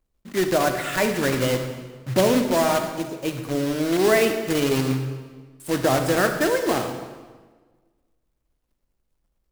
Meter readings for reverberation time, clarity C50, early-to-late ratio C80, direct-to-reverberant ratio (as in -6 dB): 1.4 s, 7.0 dB, 8.5 dB, 6.0 dB